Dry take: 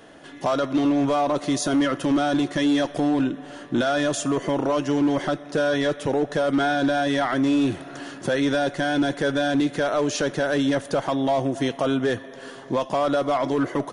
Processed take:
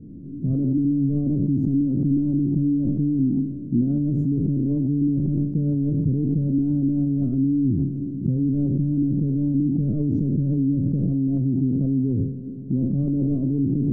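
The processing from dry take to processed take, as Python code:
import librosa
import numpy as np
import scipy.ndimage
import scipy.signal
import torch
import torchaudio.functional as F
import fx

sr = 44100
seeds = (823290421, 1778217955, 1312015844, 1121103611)

p1 = fx.spec_trails(x, sr, decay_s=0.72)
p2 = scipy.signal.sosfilt(scipy.signal.cheby2(4, 60, 790.0, 'lowpass', fs=sr, output='sos'), p1)
p3 = fx.over_compress(p2, sr, threshold_db=-36.0, ratio=-0.5)
p4 = p2 + (p3 * 10.0 ** (0.5 / 20.0))
y = p4 * 10.0 ** (6.5 / 20.0)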